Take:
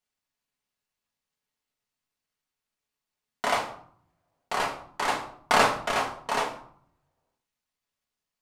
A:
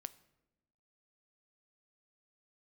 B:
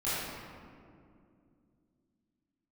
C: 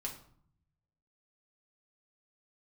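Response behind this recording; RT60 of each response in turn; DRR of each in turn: C; 1.0, 2.4, 0.60 s; 14.0, -13.0, -1.5 dB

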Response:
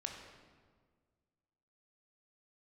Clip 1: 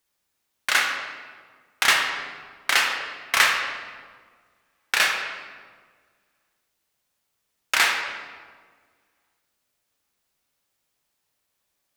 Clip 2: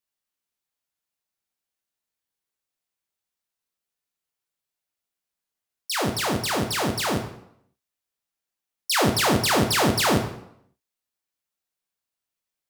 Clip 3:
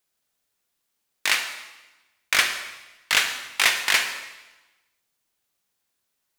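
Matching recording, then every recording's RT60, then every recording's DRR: 1; 1.7, 0.70, 1.1 s; 1.5, 3.0, 5.5 dB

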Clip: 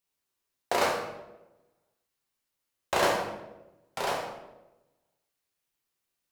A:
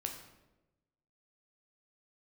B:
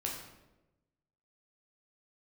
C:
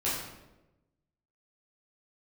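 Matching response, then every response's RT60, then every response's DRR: B; 1.0, 1.0, 1.0 s; 2.5, -2.0, -9.5 dB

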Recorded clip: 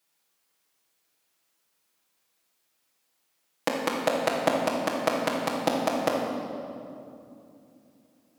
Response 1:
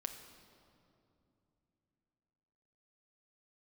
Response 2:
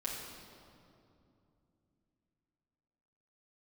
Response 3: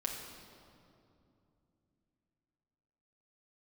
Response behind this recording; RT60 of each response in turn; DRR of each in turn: 2; 2.8, 2.7, 2.7 s; 4.5, -6.0, -1.5 dB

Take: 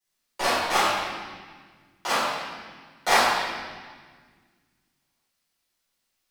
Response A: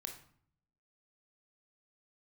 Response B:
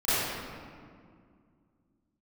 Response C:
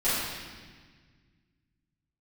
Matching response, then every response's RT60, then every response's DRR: C; 0.55, 2.1, 1.5 s; 3.0, -18.5, -14.0 dB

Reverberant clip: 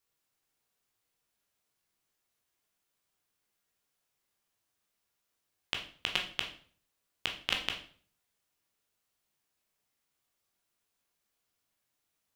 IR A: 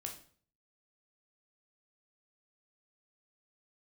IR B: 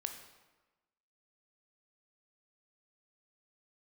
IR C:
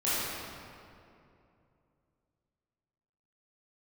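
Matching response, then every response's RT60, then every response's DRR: A; 0.45, 1.2, 2.6 s; 1.5, 5.0, -12.0 dB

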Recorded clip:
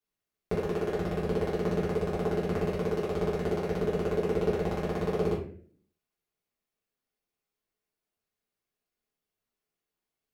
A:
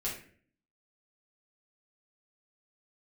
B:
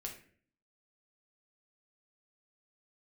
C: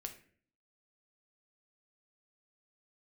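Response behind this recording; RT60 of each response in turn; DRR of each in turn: A; 0.50, 0.50, 0.50 s; -6.5, 0.0, 4.5 dB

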